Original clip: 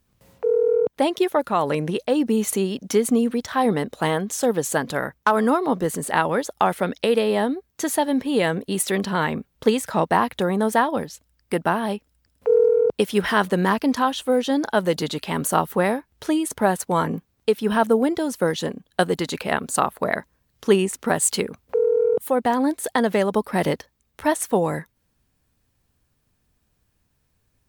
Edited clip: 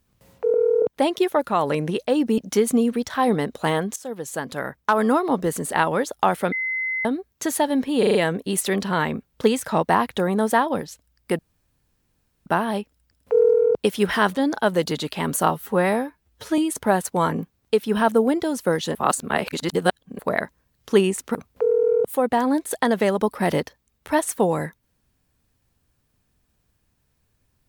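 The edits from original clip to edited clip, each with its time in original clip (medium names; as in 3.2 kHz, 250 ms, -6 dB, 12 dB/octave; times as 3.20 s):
0.54–0.82 s: reverse
2.38–2.76 s: delete
4.34–5.42 s: fade in, from -16 dB
6.90–7.43 s: bleep 2.05 kHz -22.5 dBFS
8.37 s: stutter 0.04 s, 5 plays
11.61 s: insert room tone 1.07 s
13.52–14.48 s: delete
15.61–16.33 s: stretch 1.5×
18.70–19.94 s: reverse
21.10–21.48 s: delete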